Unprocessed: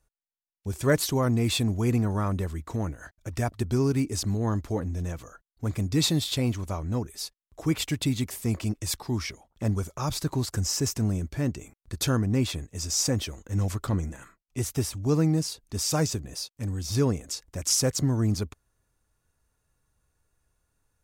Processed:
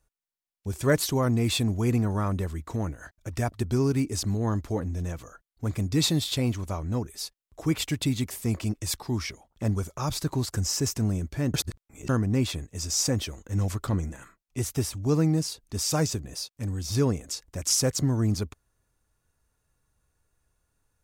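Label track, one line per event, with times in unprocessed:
11.540000	12.090000	reverse

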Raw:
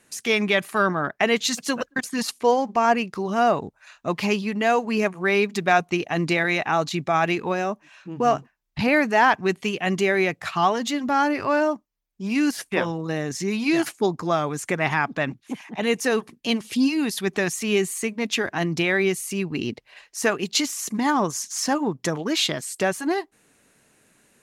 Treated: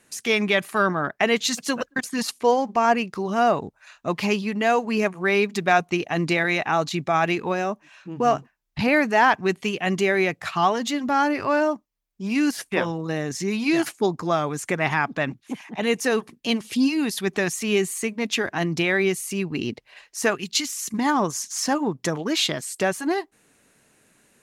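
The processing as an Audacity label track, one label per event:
20.350000	20.940000	parametric band 570 Hz −13 dB 1.8 octaves

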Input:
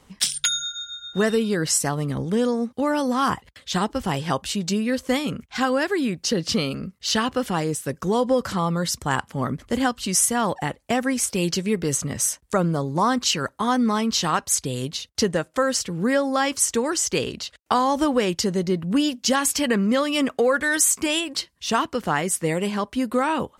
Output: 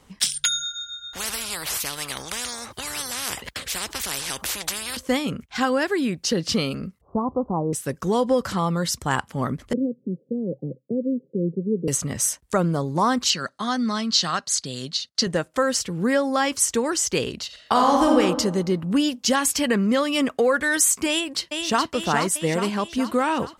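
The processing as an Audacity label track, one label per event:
1.130000	4.970000	every bin compressed towards the loudest bin 10 to 1
7.010000	7.730000	Butterworth low-pass 1,100 Hz 72 dB per octave
9.730000	11.880000	Chebyshev band-pass filter 130–530 Hz, order 5
13.300000	15.270000	loudspeaker in its box 180–9,300 Hz, peaks and dips at 310 Hz −8 dB, 460 Hz −9 dB, 910 Hz −10 dB, 2,400 Hz −5 dB, 4,400 Hz +9 dB, 8,500 Hz −4 dB
17.460000	18.180000	thrown reverb, RT60 1.2 s, DRR −0.5 dB
21.090000	21.910000	delay throw 420 ms, feedback 60%, level −5 dB

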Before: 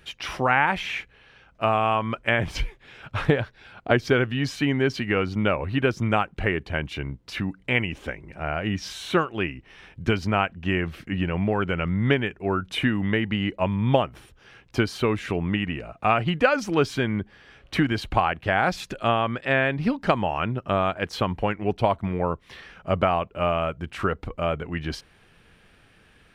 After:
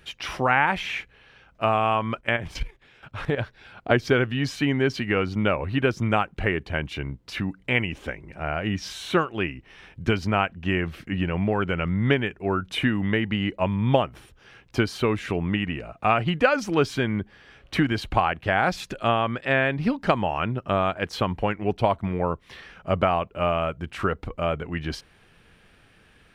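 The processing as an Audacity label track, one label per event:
2.200000	3.380000	output level in coarse steps of 11 dB

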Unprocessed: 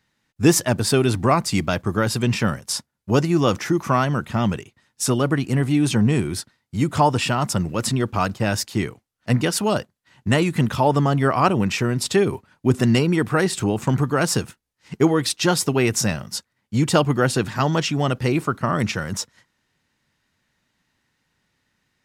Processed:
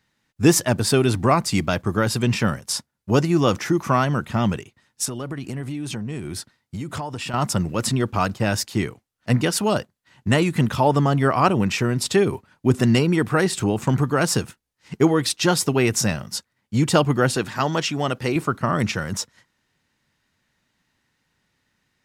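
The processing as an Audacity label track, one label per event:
5.050000	7.340000	downward compressor 8 to 1, threshold −26 dBFS
17.360000	18.360000	low-shelf EQ 180 Hz −9 dB

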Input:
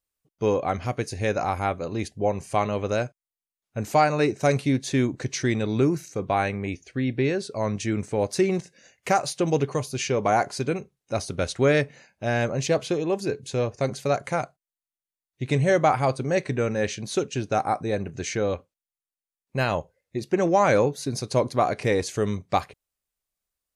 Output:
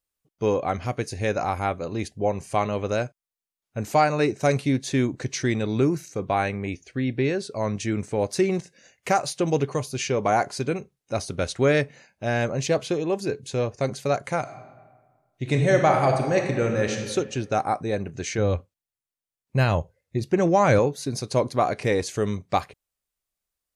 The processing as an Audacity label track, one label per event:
14.400000	16.960000	thrown reverb, RT60 1.5 s, DRR 3 dB
18.380000	20.790000	parametric band 92 Hz +10.5 dB 1.6 octaves

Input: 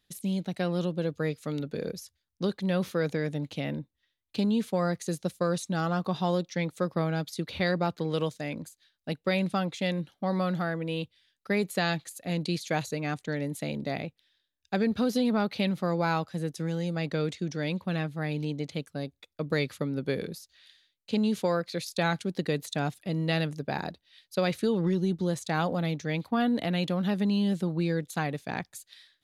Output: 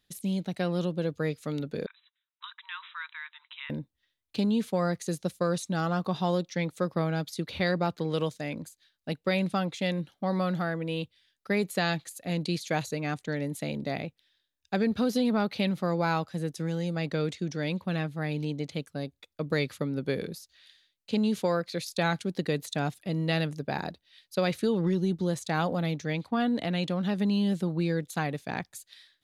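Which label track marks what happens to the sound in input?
1.860000	3.700000	linear-phase brick-wall band-pass 900–4,000 Hz
26.130000	27.180000	Chebyshev low-pass filter 8,500 Hz

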